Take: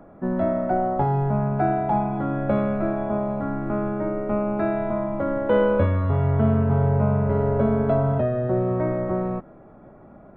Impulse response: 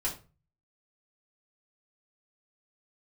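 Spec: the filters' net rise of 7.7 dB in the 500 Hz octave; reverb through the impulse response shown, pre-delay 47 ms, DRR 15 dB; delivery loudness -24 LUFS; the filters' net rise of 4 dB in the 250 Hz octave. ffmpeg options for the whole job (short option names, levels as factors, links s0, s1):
-filter_complex "[0:a]equalizer=f=250:t=o:g=3,equalizer=f=500:t=o:g=9,asplit=2[s0][s1];[1:a]atrim=start_sample=2205,adelay=47[s2];[s1][s2]afir=irnorm=-1:irlink=0,volume=0.106[s3];[s0][s3]amix=inputs=2:normalize=0,volume=0.531"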